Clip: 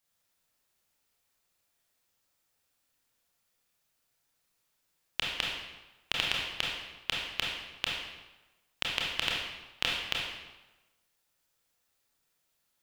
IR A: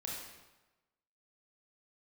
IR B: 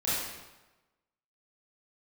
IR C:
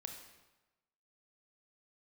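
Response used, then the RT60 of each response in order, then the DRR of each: A; 1.1 s, 1.1 s, 1.1 s; -3.5 dB, -11.0 dB, 3.5 dB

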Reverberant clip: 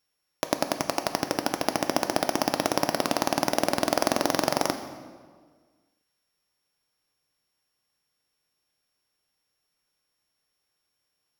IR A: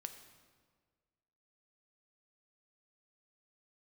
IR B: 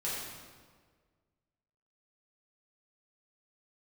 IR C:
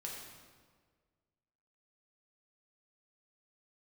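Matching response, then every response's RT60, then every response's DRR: A; 1.7 s, 1.6 s, 1.7 s; 7.0 dB, -8.5 dB, -3.0 dB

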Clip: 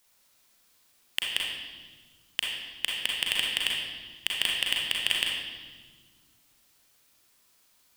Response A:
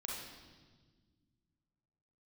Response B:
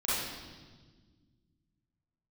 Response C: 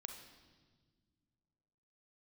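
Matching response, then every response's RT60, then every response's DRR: A; 1.5 s, 1.5 s, 1.6 s; -3.0 dB, -11.0 dB, 5.0 dB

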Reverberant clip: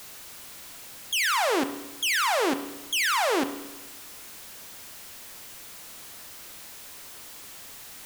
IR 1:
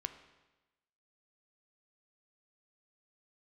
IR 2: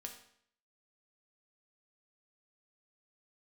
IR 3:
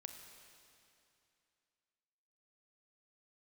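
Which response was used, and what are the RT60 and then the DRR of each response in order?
1; 1.1 s, 0.65 s, 2.7 s; 8.5 dB, 2.5 dB, 5.0 dB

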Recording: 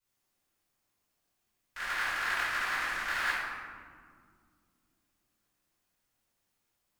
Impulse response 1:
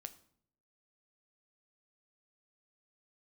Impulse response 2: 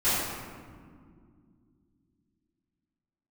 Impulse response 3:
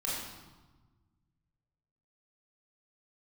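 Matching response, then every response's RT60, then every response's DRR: 2; 0.65 s, 2.1 s, 1.3 s; 9.0 dB, -16.0 dB, -6.0 dB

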